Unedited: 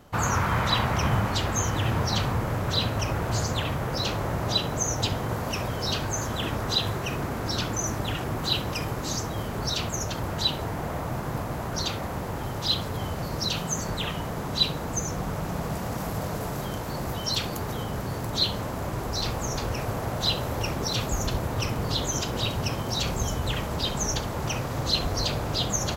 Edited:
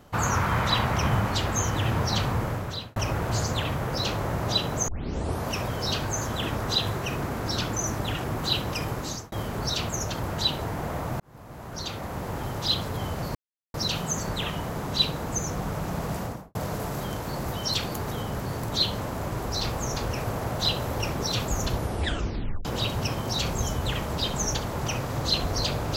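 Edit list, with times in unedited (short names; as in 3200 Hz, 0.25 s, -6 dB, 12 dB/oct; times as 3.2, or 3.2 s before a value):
2.44–2.96 fade out
4.88 tape start 0.58 s
8.89–9.32 fade out equal-power
11.2–12.34 fade in
13.35 insert silence 0.39 s
15.8–16.16 studio fade out
21.36 tape stop 0.90 s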